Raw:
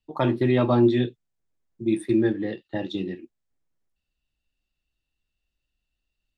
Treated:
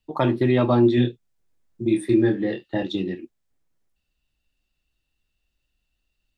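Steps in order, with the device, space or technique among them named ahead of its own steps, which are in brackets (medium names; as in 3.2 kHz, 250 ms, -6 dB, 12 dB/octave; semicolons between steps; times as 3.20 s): 0.95–2.83 s: doubling 25 ms -4.5 dB; parallel compression (in parallel at -2 dB: compression, threshold -30 dBFS, peak gain reduction 15.5 dB)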